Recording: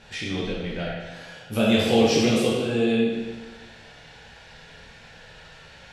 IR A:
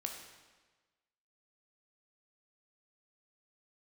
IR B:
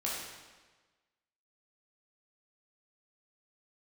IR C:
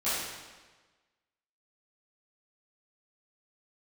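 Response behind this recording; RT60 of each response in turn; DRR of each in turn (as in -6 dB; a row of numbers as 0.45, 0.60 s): B; 1.3, 1.3, 1.3 s; 2.0, -6.0, -15.0 dB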